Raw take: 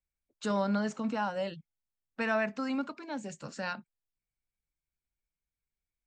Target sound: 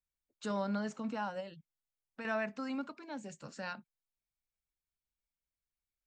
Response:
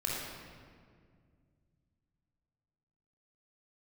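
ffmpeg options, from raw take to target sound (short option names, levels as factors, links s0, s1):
-filter_complex "[0:a]asettb=1/sr,asplit=3[s0][s1][s2];[s0]atrim=end=1.404[s3];[s1]atrim=start=1.4:end=2.25,asetpts=PTS-STARTPTS,afade=t=in:d=0.004:c=qsin,afade=t=out:st=0.846:d=0.004:c=qsin,acompressor=threshold=0.0112:ratio=2.5[s4];[s2]atrim=start=2.246[s5];[s3][s4]acrossfade=d=0.004:c1=hsin:c2=qsin[s6];[s6][s5]acrossfade=d=0.004:c1=qsin:c2=hsin,volume=0.531"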